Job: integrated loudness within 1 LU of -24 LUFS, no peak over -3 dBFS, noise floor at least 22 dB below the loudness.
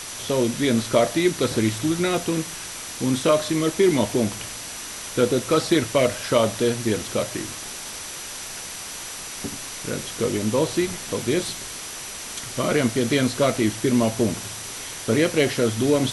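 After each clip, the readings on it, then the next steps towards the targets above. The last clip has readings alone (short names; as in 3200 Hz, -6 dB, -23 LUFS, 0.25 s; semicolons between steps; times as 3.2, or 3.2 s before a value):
steady tone 5900 Hz; tone level -41 dBFS; noise floor -35 dBFS; noise floor target -46 dBFS; loudness -23.5 LUFS; peak -4.5 dBFS; loudness target -24.0 LUFS
-> notch 5900 Hz, Q 30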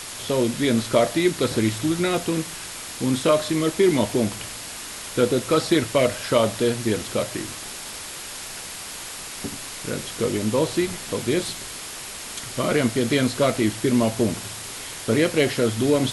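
steady tone none; noise floor -36 dBFS; noise floor target -46 dBFS
-> denoiser 10 dB, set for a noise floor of -36 dBFS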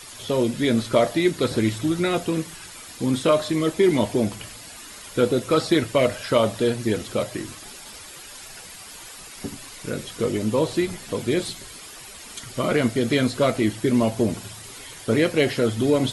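noise floor -41 dBFS; noise floor target -45 dBFS
-> denoiser 6 dB, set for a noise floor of -41 dBFS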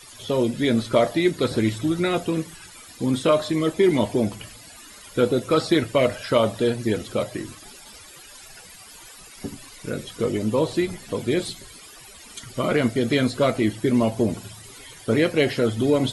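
noise floor -45 dBFS; loudness -23.0 LUFS; peak -5.0 dBFS; loudness target -24.0 LUFS
-> gain -1 dB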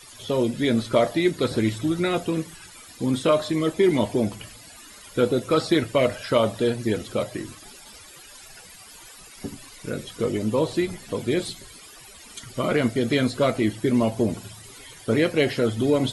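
loudness -24.0 LUFS; peak -6.0 dBFS; noise floor -46 dBFS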